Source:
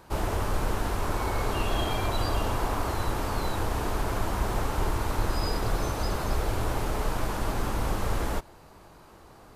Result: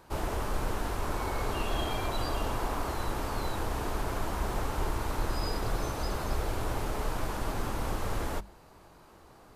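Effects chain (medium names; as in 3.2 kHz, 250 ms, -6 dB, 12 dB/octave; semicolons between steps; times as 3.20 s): hum notches 50/100/150/200 Hz; trim -3.5 dB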